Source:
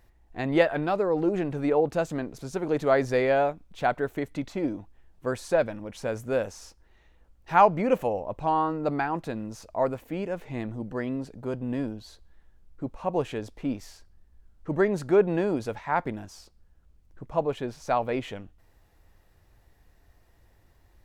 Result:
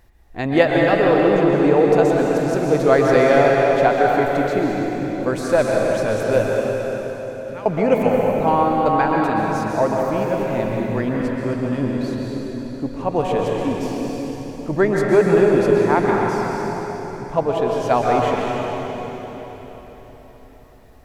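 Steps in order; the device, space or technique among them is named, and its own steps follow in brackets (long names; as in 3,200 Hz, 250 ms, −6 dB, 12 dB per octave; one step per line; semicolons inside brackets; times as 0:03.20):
0:06.48–0:07.66: guitar amp tone stack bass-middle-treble 6-0-2
cathedral (convolution reverb RT60 4.4 s, pre-delay 116 ms, DRR −2.5 dB)
level +6 dB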